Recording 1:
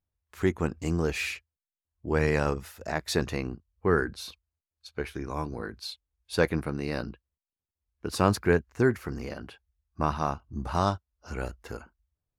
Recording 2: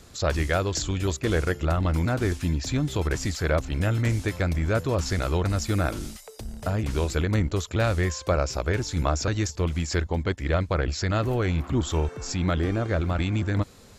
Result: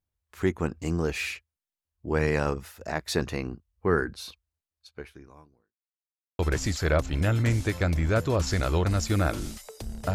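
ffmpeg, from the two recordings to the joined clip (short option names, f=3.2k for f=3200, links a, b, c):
-filter_complex "[0:a]apad=whole_dur=10.14,atrim=end=10.14,asplit=2[a][b];[a]atrim=end=5.76,asetpts=PTS-STARTPTS,afade=t=out:st=4.59:d=1.17:c=qua[c];[b]atrim=start=5.76:end=6.39,asetpts=PTS-STARTPTS,volume=0[d];[1:a]atrim=start=2.98:end=6.73,asetpts=PTS-STARTPTS,afade=t=in:d=0.004:c=hsin[e];[c][d][e]concat=n=3:v=0:a=1"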